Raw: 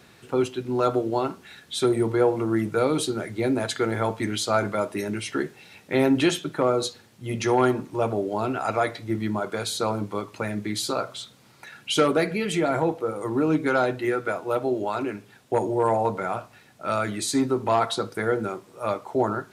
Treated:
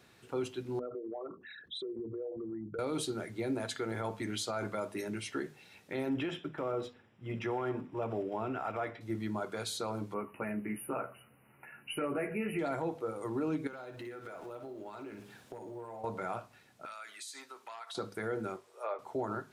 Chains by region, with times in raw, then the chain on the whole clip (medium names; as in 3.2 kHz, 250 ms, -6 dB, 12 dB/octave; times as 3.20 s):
0.79–2.79 s: resonances exaggerated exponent 3 + peaking EQ 1.5 kHz +6 dB 2.2 oct + compression 5:1, threshold -29 dBFS
6.09–9.01 s: block-companded coder 5-bit + Savitzky-Golay filter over 25 samples
10.14–12.59 s: brick-wall FIR band-stop 3–9.4 kHz + doubling 14 ms -4.5 dB
13.67–16.04 s: companding laws mixed up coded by mu + compression 20:1, threshold -32 dBFS + flutter echo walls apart 10.1 m, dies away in 0.34 s
16.85–17.95 s: high-pass 1.3 kHz + compression, threshold -33 dBFS
18.56–18.99 s: steep high-pass 380 Hz 48 dB/octave + low-pass that closes with the level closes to 2.2 kHz, closed at -24 dBFS
whole clip: hum notches 50/100/150/200/250 Hz; peak limiter -17 dBFS; trim -9 dB